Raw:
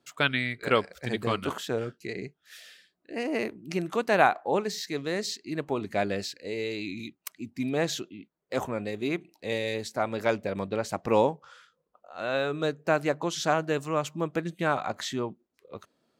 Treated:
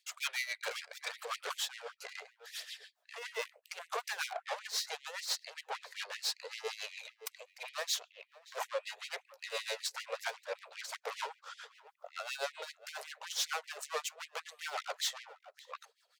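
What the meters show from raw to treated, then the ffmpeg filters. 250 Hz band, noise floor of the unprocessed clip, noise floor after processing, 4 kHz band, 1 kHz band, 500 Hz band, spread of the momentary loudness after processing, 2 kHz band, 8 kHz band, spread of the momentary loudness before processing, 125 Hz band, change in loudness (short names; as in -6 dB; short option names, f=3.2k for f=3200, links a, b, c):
under -40 dB, -77 dBFS, -75 dBFS, -2.0 dB, -12.5 dB, -16.5 dB, 13 LU, -8.5 dB, +0.5 dB, 13 LU, under -40 dB, -10.0 dB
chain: -filter_complex "[0:a]highpass=53,afftfilt=real='re*lt(hypot(re,im),0.447)':imag='im*lt(hypot(re,im),0.447)':win_size=1024:overlap=0.75,aeval=exprs='(tanh(70.8*val(0)+0.65)-tanh(0.65))/70.8':c=same,asplit=2[a][b];[b]adelay=583.1,volume=-20dB,highshelf=f=4k:g=-13.1[c];[a][c]amix=inputs=2:normalize=0,aphaser=in_gain=1:out_gain=1:delay=2.2:decay=0.3:speed=0.75:type=triangular,equalizer=f=5k:w=0.78:g=3,asplit=2[d][e];[e]acompressor=threshold=-51dB:ratio=12,volume=0dB[f];[d][f]amix=inputs=2:normalize=0,lowshelf=f=140:g=7,tremolo=f=7.3:d=0.79,afftfilt=real='re*gte(b*sr/1024,390*pow(1900/390,0.5+0.5*sin(2*PI*5.2*pts/sr)))':imag='im*gte(b*sr/1024,390*pow(1900/390,0.5+0.5*sin(2*PI*5.2*pts/sr)))':win_size=1024:overlap=0.75,volume=5dB"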